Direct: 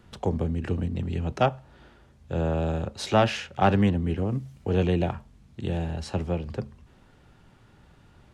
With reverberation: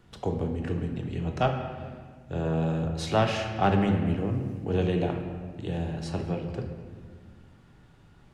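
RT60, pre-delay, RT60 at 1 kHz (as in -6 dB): 1.7 s, 3 ms, 1.5 s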